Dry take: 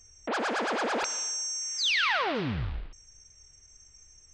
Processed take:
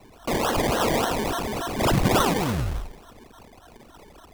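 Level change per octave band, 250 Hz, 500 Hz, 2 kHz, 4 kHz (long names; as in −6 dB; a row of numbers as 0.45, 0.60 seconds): +11.0, +9.0, −1.0, −1.0 decibels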